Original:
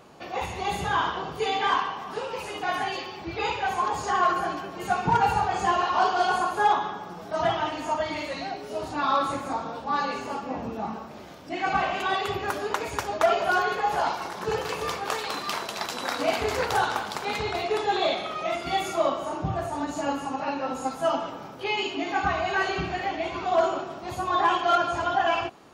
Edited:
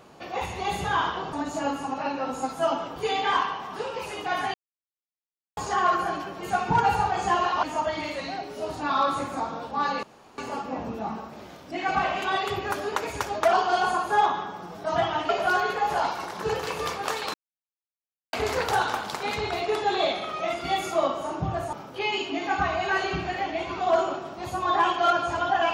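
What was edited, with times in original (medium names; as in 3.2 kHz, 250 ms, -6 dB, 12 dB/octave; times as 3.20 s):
2.91–3.94 s: mute
6.00–7.76 s: move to 13.31 s
10.16 s: insert room tone 0.35 s
15.36–16.35 s: mute
19.75–21.38 s: move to 1.33 s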